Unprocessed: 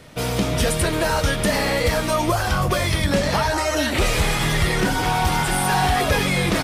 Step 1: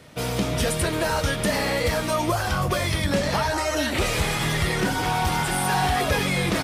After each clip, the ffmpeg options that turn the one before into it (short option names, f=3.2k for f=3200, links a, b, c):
-af "highpass=50,volume=-3dB"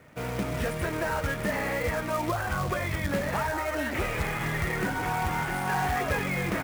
-af "highshelf=f=3k:t=q:w=1.5:g=-12.5,acrusher=bits=3:mode=log:mix=0:aa=0.000001,volume=-6dB"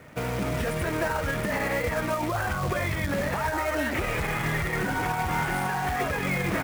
-af "alimiter=level_in=1dB:limit=-24dB:level=0:latency=1:release=48,volume=-1dB,volume=5.5dB"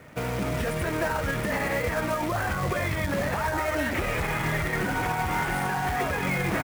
-af "aecho=1:1:871:0.266"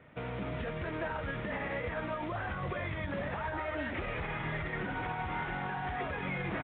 -af "aresample=8000,aresample=44100,volume=-9dB"